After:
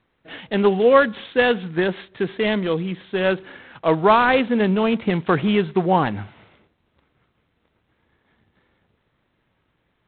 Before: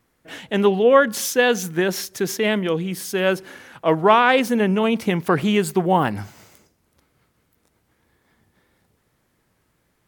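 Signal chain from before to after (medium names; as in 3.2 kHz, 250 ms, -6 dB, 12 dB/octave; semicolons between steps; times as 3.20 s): 3.37–5.67 s: bass shelf 66 Hz +3.5 dB; G.726 24 kbps 8 kHz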